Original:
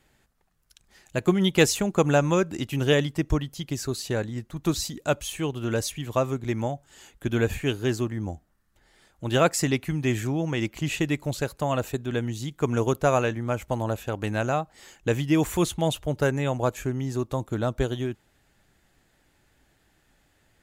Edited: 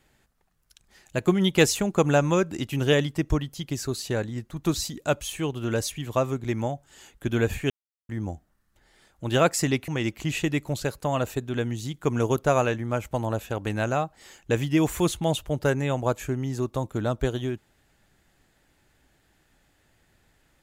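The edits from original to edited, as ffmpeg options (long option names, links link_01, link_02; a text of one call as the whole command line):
ffmpeg -i in.wav -filter_complex "[0:a]asplit=4[link_01][link_02][link_03][link_04];[link_01]atrim=end=7.7,asetpts=PTS-STARTPTS,afade=type=out:start_time=7.696:duration=0.004:curve=hsin[link_05];[link_02]atrim=start=7.7:end=8.09,asetpts=PTS-STARTPTS,volume=0[link_06];[link_03]atrim=start=8.09:end=9.882,asetpts=PTS-STARTPTS,afade=type=in:duration=0.004:curve=hsin[link_07];[link_04]atrim=start=10.448[link_08];[link_05][link_06][link_07]concat=n=3:v=0:a=1[link_09];[link_09][link_08]acrossfade=duration=0.004:curve1=hsin:curve2=hsin" out.wav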